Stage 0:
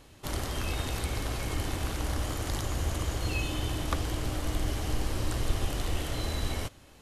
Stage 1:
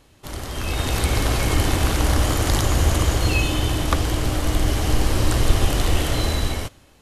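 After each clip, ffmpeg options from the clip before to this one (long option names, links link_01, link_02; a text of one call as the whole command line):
ffmpeg -i in.wav -af "dynaudnorm=framelen=140:gausssize=11:maxgain=13dB" out.wav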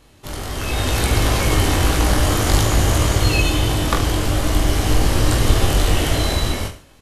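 ffmpeg -i in.wav -af "aecho=1:1:20|44|72.8|107.4|148.8:0.631|0.398|0.251|0.158|0.1,volume=1.5dB" out.wav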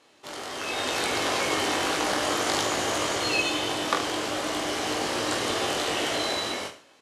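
ffmpeg -i in.wav -af "highpass=370,lowpass=7600,volume=-3.5dB" out.wav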